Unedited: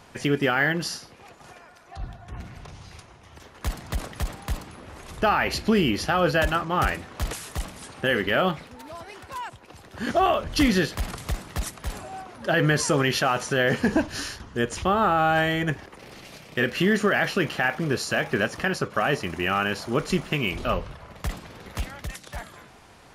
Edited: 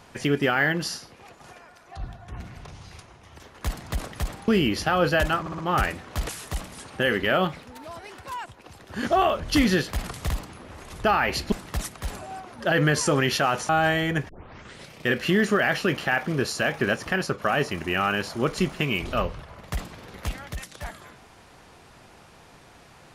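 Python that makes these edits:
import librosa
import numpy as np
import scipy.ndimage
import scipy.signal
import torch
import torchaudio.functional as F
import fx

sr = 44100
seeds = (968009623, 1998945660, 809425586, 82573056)

y = fx.edit(x, sr, fx.move(start_s=4.48, length_s=1.22, to_s=11.34),
    fx.stutter(start_s=6.62, slice_s=0.06, count=4),
    fx.cut(start_s=13.51, length_s=1.7),
    fx.tape_start(start_s=15.81, length_s=0.62), tone=tone)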